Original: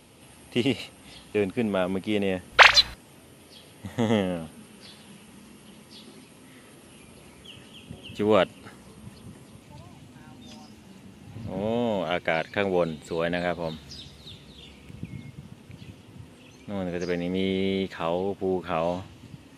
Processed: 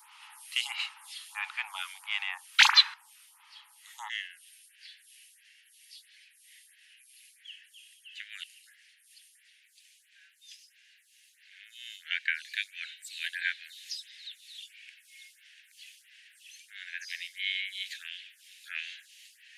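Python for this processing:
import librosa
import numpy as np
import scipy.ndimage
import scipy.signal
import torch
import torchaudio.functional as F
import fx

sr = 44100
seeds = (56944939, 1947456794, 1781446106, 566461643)

y = fx.steep_highpass(x, sr, hz=fx.steps((0.0, 850.0), (4.08, 1600.0)), slope=96)
y = fx.rider(y, sr, range_db=3, speed_s=2.0)
y = fx.stagger_phaser(y, sr, hz=1.5)
y = y * 10.0 ** (4.0 / 20.0)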